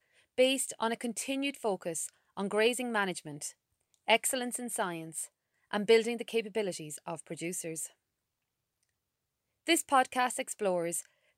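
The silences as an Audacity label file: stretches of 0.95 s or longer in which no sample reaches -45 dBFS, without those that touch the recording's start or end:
7.870000	9.670000	silence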